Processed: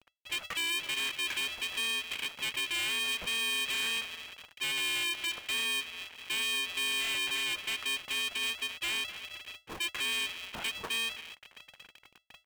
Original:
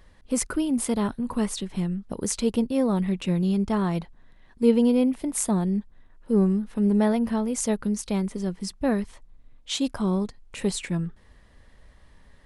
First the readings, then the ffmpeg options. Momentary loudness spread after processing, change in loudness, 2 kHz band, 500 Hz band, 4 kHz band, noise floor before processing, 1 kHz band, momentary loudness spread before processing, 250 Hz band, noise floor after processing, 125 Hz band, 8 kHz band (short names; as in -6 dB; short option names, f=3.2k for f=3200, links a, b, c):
10 LU, -6.0 dB, +10.0 dB, -22.0 dB, +9.5 dB, -55 dBFS, -8.0 dB, 9 LU, -30.0 dB, -65 dBFS, -29.5 dB, -5.0 dB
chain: -filter_complex "[0:a]alimiter=limit=-19dB:level=0:latency=1:release=233,asplit=2[a][b];[b]adelay=259,lowpass=f=980:p=1,volume=-20dB,asplit=2[c][d];[d]adelay=259,lowpass=f=980:p=1,volume=0.48,asplit=2[e][f];[f]adelay=259,lowpass=f=980:p=1,volume=0.48,asplit=2[g][h];[h]adelay=259,lowpass=f=980:p=1,volume=0.48[i];[c][e][g][i]amix=inputs=4:normalize=0[j];[a][j]amix=inputs=2:normalize=0,aeval=exprs='val(0)*gte(abs(val(0)),0.00596)':c=same,lowpass=f=2.6k:t=q:w=0.5098,lowpass=f=2.6k:t=q:w=0.6013,lowpass=f=2.6k:t=q:w=0.9,lowpass=f=2.6k:t=q:w=2.563,afreqshift=-3000,asoftclip=type=tanh:threshold=-32.5dB,aeval=exprs='val(0)*sgn(sin(2*PI*340*n/s))':c=same,volume=2dB"